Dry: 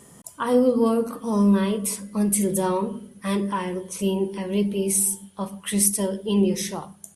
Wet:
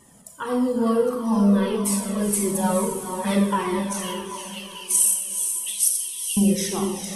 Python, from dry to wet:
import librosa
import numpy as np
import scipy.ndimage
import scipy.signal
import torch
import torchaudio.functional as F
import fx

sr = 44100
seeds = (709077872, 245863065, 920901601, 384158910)

y = fx.steep_highpass(x, sr, hz=2600.0, slope=48, at=(3.93, 6.37))
y = fx.rider(y, sr, range_db=3, speed_s=0.5)
y = fx.echo_diffused(y, sr, ms=454, feedback_pct=42, wet_db=-6.0)
y = fx.rev_schroeder(y, sr, rt60_s=0.79, comb_ms=28, drr_db=3.5)
y = fx.comb_cascade(y, sr, direction='falling', hz=1.6)
y = y * 10.0 ** (3.5 / 20.0)